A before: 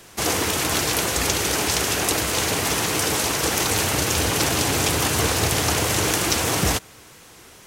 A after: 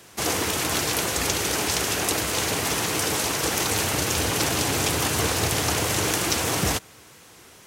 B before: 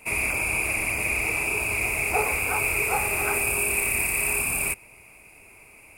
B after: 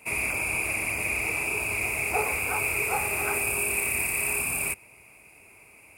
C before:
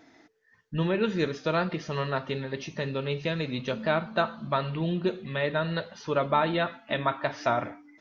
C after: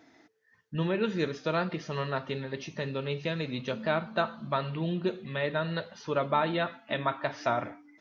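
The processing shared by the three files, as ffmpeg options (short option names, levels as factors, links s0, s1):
-af "highpass=60,volume=0.75"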